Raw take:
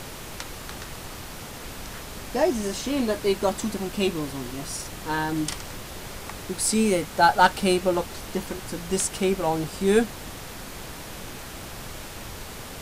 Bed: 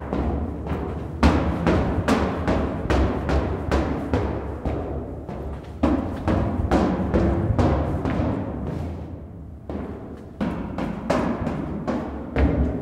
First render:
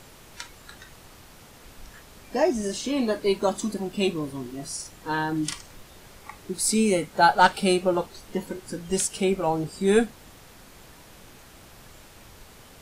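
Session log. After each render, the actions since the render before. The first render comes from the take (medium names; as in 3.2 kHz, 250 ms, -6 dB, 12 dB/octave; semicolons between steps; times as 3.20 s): noise print and reduce 11 dB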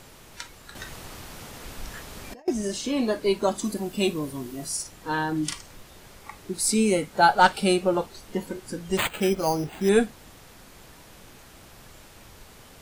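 0.75–2.48 s: compressor with a negative ratio -39 dBFS; 3.64–4.83 s: treble shelf 9.9 kHz +11 dB; 8.97–9.89 s: careless resampling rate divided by 8×, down none, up hold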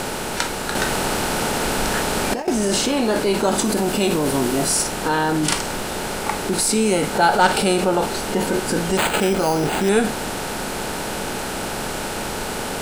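spectral levelling over time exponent 0.6; in parallel at -1 dB: compressor with a negative ratio -26 dBFS, ratio -0.5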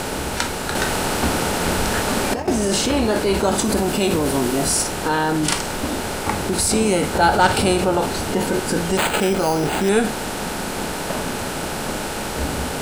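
add bed -7 dB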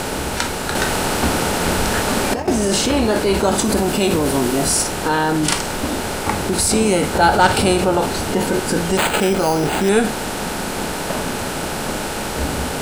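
trim +2 dB; peak limiter -1 dBFS, peak gain reduction 1 dB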